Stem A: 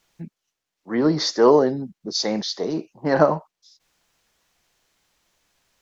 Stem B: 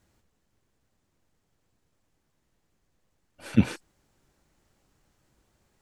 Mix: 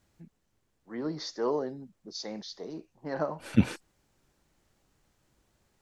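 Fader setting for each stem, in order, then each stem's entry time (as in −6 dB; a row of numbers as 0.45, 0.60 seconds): −15.0, −2.0 decibels; 0.00, 0.00 seconds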